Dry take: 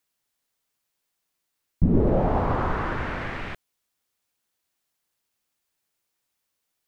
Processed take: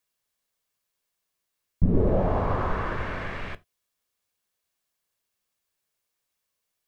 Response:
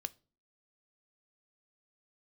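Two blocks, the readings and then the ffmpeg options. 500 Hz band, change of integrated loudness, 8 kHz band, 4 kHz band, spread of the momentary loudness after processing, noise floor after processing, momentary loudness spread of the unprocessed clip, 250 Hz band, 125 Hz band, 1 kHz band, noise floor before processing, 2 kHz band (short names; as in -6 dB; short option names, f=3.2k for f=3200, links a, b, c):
-1.0 dB, -2.0 dB, n/a, -2.0 dB, 14 LU, -81 dBFS, 14 LU, -3.5 dB, -1.5 dB, -2.5 dB, -80 dBFS, -2.0 dB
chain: -filter_complex "[1:a]atrim=start_sample=2205,afade=t=out:st=0.14:d=0.01,atrim=end_sample=6615[a];[0:a][a]afir=irnorm=-1:irlink=0"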